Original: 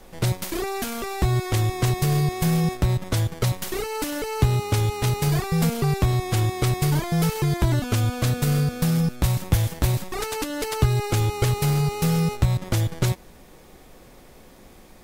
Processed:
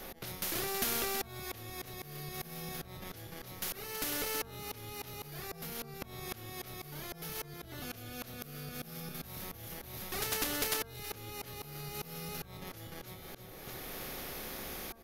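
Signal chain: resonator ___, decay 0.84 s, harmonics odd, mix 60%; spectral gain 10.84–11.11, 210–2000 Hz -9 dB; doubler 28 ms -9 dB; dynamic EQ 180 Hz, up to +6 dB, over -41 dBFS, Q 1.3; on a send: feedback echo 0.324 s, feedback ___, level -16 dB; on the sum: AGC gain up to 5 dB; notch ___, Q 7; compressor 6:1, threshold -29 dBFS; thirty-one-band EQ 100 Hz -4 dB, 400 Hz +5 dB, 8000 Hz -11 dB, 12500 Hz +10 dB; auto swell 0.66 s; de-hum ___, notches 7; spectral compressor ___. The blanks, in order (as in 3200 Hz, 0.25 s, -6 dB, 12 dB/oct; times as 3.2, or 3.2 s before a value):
76 Hz, 29%, 990 Hz, 228.1 Hz, 2:1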